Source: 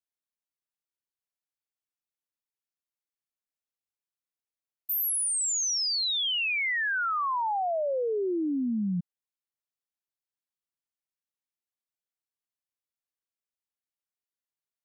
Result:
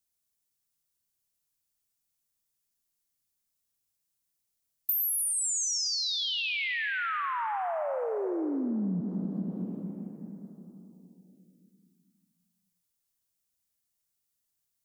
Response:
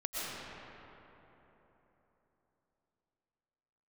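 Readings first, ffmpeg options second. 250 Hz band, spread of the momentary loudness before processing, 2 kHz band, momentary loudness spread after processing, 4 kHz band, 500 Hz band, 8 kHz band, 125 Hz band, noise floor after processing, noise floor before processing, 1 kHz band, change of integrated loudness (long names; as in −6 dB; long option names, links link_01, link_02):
0.0 dB, 5 LU, −3.0 dB, 14 LU, −2.5 dB, −3.0 dB, −1.5 dB, +2.0 dB, −81 dBFS, below −85 dBFS, −3.0 dB, −3.0 dB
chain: -filter_complex "[0:a]bass=frequency=250:gain=11,treble=frequency=4000:gain=9,asplit=2[link_01][link_02];[1:a]atrim=start_sample=2205,highshelf=frequency=5100:gain=11[link_03];[link_02][link_03]afir=irnorm=-1:irlink=0,volume=-9dB[link_04];[link_01][link_04]amix=inputs=2:normalize=0,acompressor=threshold=-29dB:ratio=6"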